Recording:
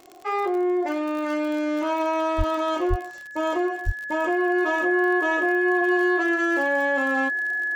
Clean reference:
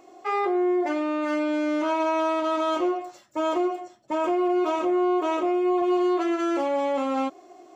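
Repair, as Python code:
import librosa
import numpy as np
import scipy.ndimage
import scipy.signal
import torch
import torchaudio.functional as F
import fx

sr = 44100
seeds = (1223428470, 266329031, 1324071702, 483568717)

y = fx.fix_declick_ar(x, sr, threshold=6.5)
y = fx.notch(y, sr, hz=1700.0, q=30.0)
y = fx.fix_deplosive(y, sr, at_s=(2.37, 2.89, 3.85))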